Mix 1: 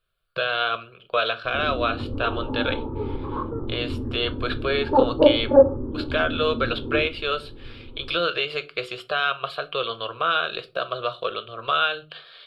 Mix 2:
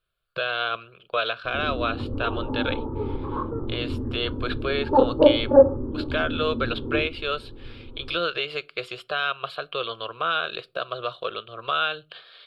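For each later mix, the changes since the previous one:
speech: send -11.5 dB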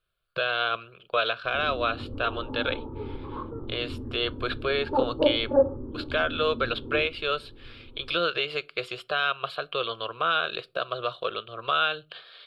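background -7.0 dB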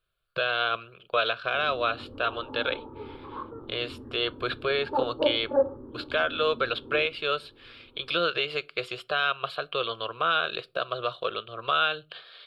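background: add tilt +3 dB/oct

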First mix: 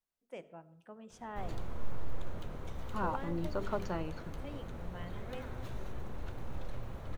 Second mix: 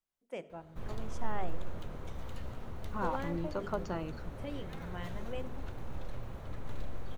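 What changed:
first voice +4.5 dB; background: entry -0.60 s

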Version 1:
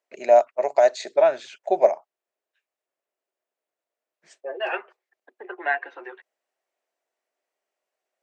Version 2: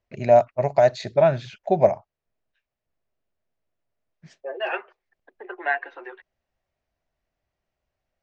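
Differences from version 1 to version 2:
first voice: remove HPF 350 Hz 24 dB/oct; master: add LPF 5900 Hz 24 dB/oct

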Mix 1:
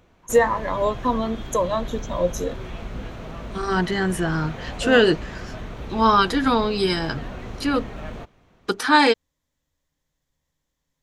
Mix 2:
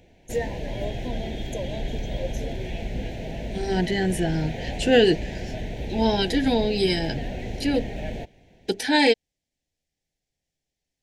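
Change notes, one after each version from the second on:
first voice -10.5 dB; background +3.5 dB; master: add Chebyshev band-stop 750–1900 Hz, order 2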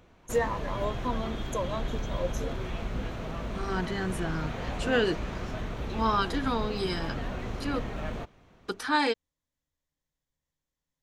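second voice -10.0 dB; background -4.0 dB; master: remove Chebyshev band-stop 750–1900 Hz, order 2

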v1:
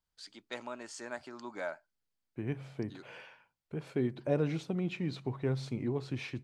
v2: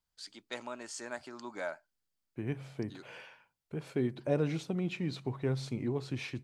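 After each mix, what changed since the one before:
master: add high shelf 5800 Hz +6.5 dB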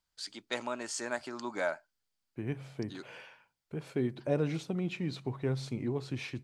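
first voice +5.5 dB

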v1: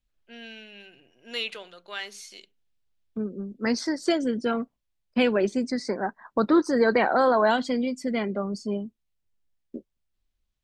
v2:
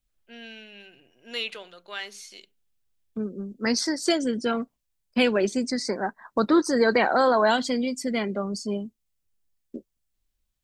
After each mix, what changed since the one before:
second voice: add high shelf 4400 Hz +12 dB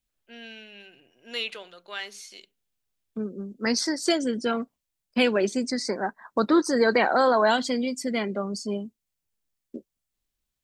master: add low shelf 78 Hz -9.5 dB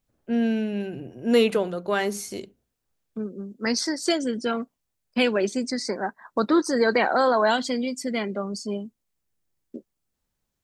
first voice: remove band-pass 3300 Hz, Q 1.4

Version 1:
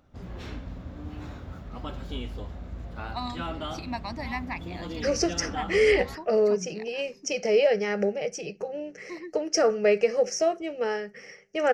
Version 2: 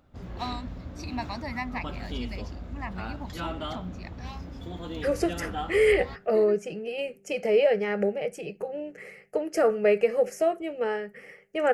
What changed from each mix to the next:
first voice: entry -2.75 s; second voice: remove synth low-pass 5700 Hz, resonance Q 9.2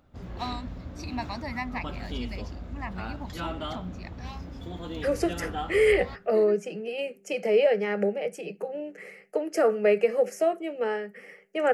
second voice: add steep high-pass 160 Hz 96 dB/oct

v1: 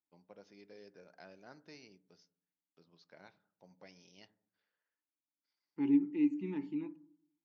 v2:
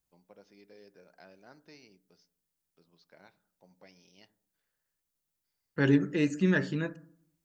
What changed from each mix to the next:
second voice: remove vowel filter u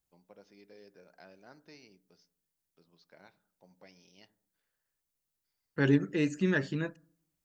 second voice: send -11.0 dB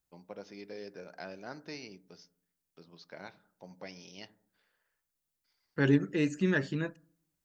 first voice +11.0 dB

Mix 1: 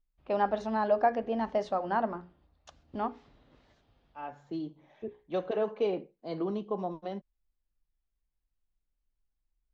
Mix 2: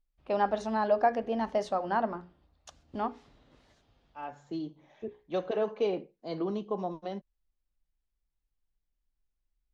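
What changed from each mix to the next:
master: remove air absorption 100 m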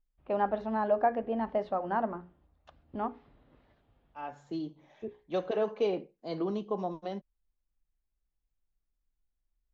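first voice: add air absorption 410 m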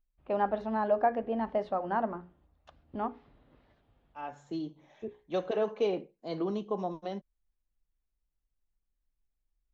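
second voice: add notch 4700 Hz, Q 11; master: add high shelf 10000 Hz +11.5 dB

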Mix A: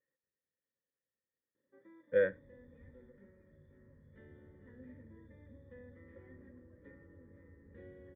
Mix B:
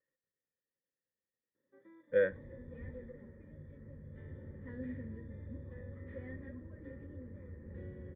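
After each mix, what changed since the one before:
second sound +11.5 dB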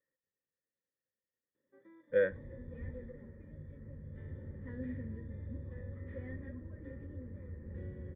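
second sound: add low shelf 120 Hz +5.5 dB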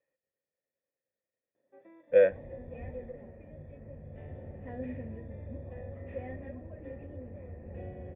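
master: remove fixed phaser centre 2600 Hz, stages 6

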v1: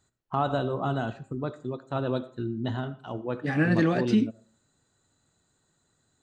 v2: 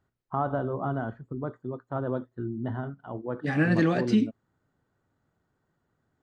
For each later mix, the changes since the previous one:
first voice: add polynomial smoothing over 41 samples; reverb: off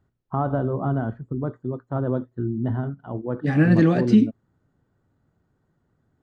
master: add low shelf 440 Hz +9 dB

